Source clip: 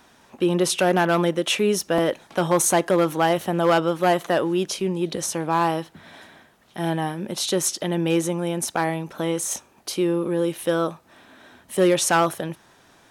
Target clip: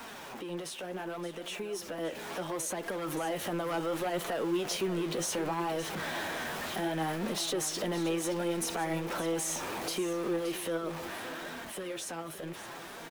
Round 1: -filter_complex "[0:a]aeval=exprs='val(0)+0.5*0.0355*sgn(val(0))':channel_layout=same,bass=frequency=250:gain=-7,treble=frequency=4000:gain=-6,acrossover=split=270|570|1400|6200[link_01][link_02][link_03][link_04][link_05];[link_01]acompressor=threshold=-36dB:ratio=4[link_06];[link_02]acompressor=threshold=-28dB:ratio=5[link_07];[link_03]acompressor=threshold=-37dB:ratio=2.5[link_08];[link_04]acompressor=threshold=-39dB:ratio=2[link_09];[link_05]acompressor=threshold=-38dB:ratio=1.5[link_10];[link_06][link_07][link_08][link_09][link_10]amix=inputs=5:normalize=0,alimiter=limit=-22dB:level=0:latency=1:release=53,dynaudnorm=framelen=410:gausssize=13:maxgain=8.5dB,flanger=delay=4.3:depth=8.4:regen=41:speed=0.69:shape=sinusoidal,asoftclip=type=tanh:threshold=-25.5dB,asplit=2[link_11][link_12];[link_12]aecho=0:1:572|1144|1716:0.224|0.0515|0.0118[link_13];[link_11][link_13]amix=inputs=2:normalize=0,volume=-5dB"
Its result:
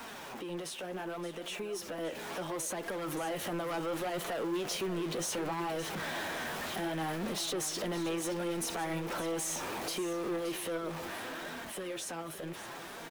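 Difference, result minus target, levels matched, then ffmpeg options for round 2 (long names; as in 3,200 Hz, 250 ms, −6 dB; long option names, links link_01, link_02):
soft clipping: distortion +7 dB
-filter_complex "[0:a]aeval=exprs='val(0)+0.5*0.0355*sgn(val(0))':channel_layout=same,bass=frequency=250:gain=-7,treble=frequency=4000:gain=-6,acrossover=split=270|570|1400|6200[link_01][link_02][link_03][link_04][link_05];[link_01]acompressor=threshold=-36dB:ratio=4[link_06];[link_02]acompressor=threshold=-28dB:ratio=5[link_07];[link_03]acompressor=threshold=-37dB:ratio=2.5[link_08];[link_04]acompressor=threshold=-39dB:ratio=2[link_09];[link_05]acompressor=threshold=-38dB:ratio=1.5[link_10];[link_06][link_07][link_08][link_09][link_10]amix=inputs=5:normalize=0,alimiter=limit=-22dB:level=0:latency=1:release=53,dynaudnorm=framelen=410:gausssize=13:maxgain=8.5dB,flanger=delay=4.3:depth=8.4:regen=41:speed=0.69:shape=sinusoidal,asoftclip=type=tanh:threshold=-19dB,asplit=2[link_11][link_12];[link_12]aecho=0:1:572|1144|1716:0.224|0.0515|0.0118[link_13];[link_11][link_13]amix=inputs=2:normalize=0,volume=-5dB"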